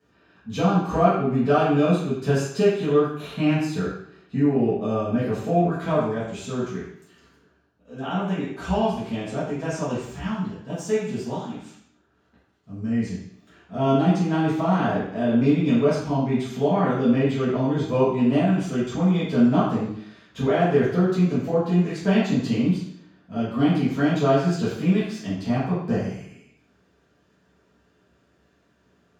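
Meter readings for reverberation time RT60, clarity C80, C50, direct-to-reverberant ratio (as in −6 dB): 0.70 s, 4.5 dB, 1.0 dB, −12.0 dB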